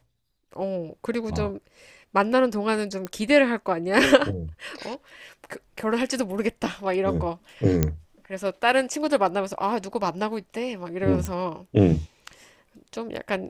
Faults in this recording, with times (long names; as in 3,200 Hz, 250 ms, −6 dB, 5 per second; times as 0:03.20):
0:03.05: click −17 dBFS
0:07.83: click −7 dBFS
0:11.25: click −15 dBFS